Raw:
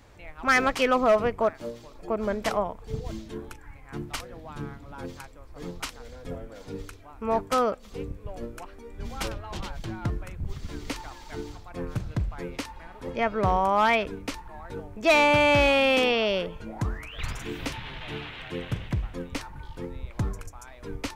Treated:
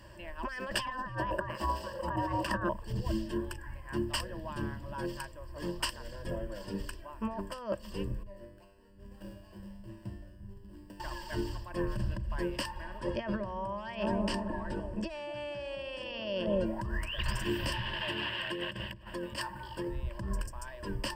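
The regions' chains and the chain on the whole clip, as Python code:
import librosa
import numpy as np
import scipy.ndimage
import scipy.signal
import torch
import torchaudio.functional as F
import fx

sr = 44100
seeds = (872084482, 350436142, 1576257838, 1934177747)

y = fx.chain(x, sr, fx.over_compress(threshold_db=-33.0, ratio=-1.0),
    fx.ring_mod(carrier_hz=520.0), at=(0.74, 2.69))
y = fx.chain(y, sr, fx.median_filter(points=41),
    fx.high_shelf(hz=5000.0, db=6.5),
    fx.comb_fb(f0_hz=99.0, decay_s=0.97, harmonics='all', damping=0.0, mix_pct=90), at=(8.23, 11.0))
y = fx.chain(y, sr, fx.lowpass(hz=9100.0, slope=12),
    fx.echo_wet_lowpass(ms=217, feedback_pct=46, hz=450.0, wet_db=-3.5), at=(12.98, 16.66))
y = fx.chain(y, sr, fx.notch(hz=5900.0, q=12.0),
    fx.over_compress(threshold_db=-36.0, ratio=-1.0),
    fx.highpass(hz=220.0, slope=6), at=(17.93, 19.88))
y = fx.over_compress(y, sr, threshold_db=-31.0, ratio=-1.0)
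y = fx.ripple_eq(y, sr, per_octave=1.3, db=16)
y = y * librosa.db_to_amplitude(-5.5)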